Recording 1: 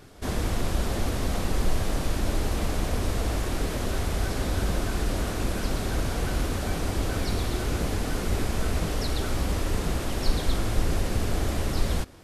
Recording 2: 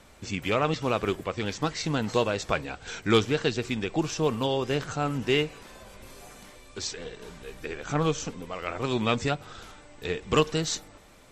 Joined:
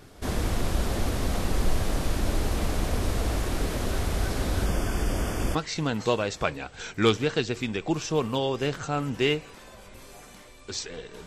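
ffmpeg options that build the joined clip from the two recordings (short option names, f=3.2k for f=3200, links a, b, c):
-filter_complex "[0:a]asettb=1/sr,asplit=3[a][b][c];[a]atrim=end=4.664[d];[b]atrim=start=4.66:end=5.55,asetpts=PTS-STARTPTS,afade=t=in:d=0.004:c=qsin,afade=t=out:st=0.886:d=0.004:c=qsin,asuperstop=centerf=4000:order=8:qfactor=4.8[e];[c]atrim=start=5.546[f];[d][e]acrossfade=d=0.004:c1=hsin:c2=qsin[g];[g][f]acrossfade=d=0.004:c1=qsin:c2=hsin,apad=whole_dur=11.26,atrim=end=11.26,atrim=end=5.552[h];[1:a]atrim=start=1.628:end=7.34[i];[h][i]acrossfade=d=0.004:c1=hsin:c2=hsin"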